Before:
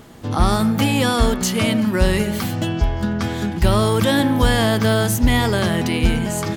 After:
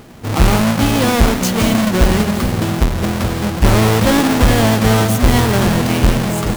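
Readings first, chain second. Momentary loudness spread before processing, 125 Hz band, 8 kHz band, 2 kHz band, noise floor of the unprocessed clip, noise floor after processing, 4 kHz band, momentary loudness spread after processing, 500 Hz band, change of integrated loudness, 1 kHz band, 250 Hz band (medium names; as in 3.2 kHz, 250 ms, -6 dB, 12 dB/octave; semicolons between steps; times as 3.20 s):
6 LU, +5.0 dB, +4.5 dB, +3.5 dB, -26 dBFS, -21 dBFS, +2.5 dB, 5 LU, +3.5 dB, +4.0 dB, +4.5 dB, +4.0 dB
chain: square wave that keeps the level; two-band feedback delay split 750 Hz, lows 421 ms, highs 168 ms, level -11 dB; trim -1 dB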